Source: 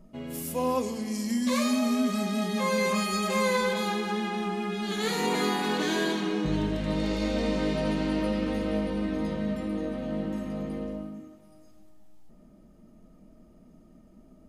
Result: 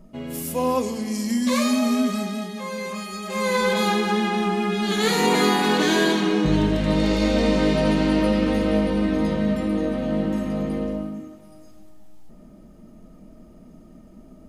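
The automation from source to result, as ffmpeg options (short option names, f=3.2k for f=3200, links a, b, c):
-af "volume=17.5dB,afade=t=out:st=1.99:d=0.56:silence=0.334965,afade=t=in:st=3.25:d=0.58:silence=0.237137"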